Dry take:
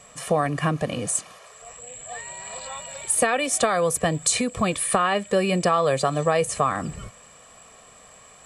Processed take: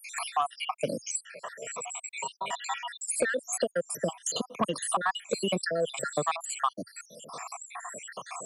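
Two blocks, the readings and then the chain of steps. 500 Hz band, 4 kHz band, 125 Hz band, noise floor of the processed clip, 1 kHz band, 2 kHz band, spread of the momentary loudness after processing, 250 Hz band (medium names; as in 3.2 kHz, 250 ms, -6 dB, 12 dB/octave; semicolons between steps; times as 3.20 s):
-8.5 dB, -4.5 dB, -14.5 dB, -59 dBFS, -6.5 dB, -6.0 dB, 12 LU, -10.0 dB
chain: random holes in the spectrogram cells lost 75%; Bessel high-pass 220 Hz, order 8; peaking EQ 970 Hz +6 dB 0.21 oct; in parallel at -8.5 dB: sine folder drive 6 dB, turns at -9.5 dBFS; on the sum: three bands compressed up and down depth 70%; trim -7 dB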